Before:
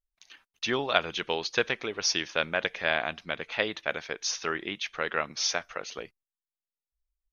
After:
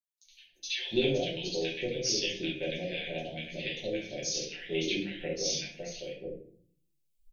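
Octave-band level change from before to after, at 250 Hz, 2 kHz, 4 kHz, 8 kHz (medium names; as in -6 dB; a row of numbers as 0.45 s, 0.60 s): +3.0 dB, -9.0 dB, -2.0 dB, no reading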